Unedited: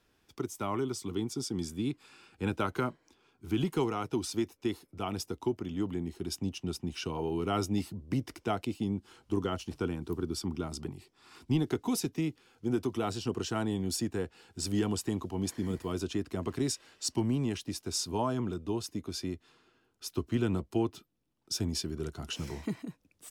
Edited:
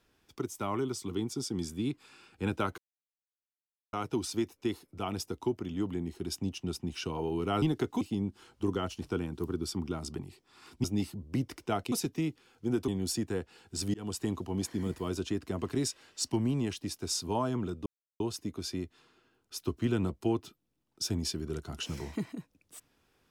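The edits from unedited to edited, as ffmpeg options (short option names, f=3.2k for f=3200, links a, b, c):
-filter_complex "[0:a]asplit=10[a][b][c][d][e][f][g][h][i][j];[a]atrim=end=2.78,asetpts=PTS-STARTPTS,afade=t=out:st=2.776:d=0.004:c=hsin[k];[b]atrim=start=2.78:end=3.93,asetpts=PTS-STARTPTS,volume=0[l];[c]atrim=start=3.93:end=7.622,asetpts=PTS-STARTPTS,afade=t=in:d=0.004:c=hsin[m];[d]atrim=start=11.528:end=11.922[n];[e]atrim=start=8.698:end=11.532[o];[f]atrim=start=7.618:end=8.702[p];[g]atrim=start=11.918:end=12.882[q];[h]atrim=start=13.718:end=14.78,asetpts=PTS-STARTPTS,afade=t=out:st=1.058:d=0.004:c=hsin[r];[i]atrim=start=14.78:end=18.7,asetpts=PTS-STARTPTS,afade=t=in:d=0.36:c=qsin,afade=t=out:st=3.916:d=0.004:c=hsin,apad=pad_dur=0.34[s];[j]atrim=start=18.7,asetpts=PTS-STARTPTS,afade=t=in:d=0.004:c=hsin[t];[k][l][m]concat=n=3:v=0:a=1[u];[u][n]acrossfade=d=0.004:c1=hsin:c2=hsin[v];[v][o]acrossfade=d=0.004:c1=hsin:c2=hsin[w];[w][p]acrossfade=d=0.004:c1=hsin:c2=hsin[x];[x][q]acrossfade=d=0.004:c1=hsin:c2=hsin[y];[r][s][t]concat=n=3:v=0:a=1[z];[y][z]acrossfade=d=0.004:c1=hsin:c2=hsin"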